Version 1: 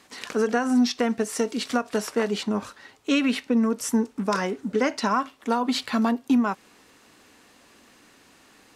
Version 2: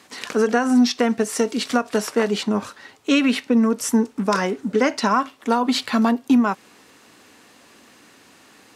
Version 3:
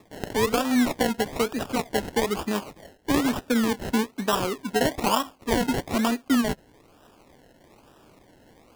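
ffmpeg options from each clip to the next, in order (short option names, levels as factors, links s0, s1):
-af "highpass=83,volume=1.68"
-af "equalizer=f=120:t=o:w=1.9:g=-6.5,aresample=16000,aresample=44100,acrusher=samples=29:mix=1:aa=0.000001:lfo=1:lforange=17.4:lforate=1.1,volume=0.708"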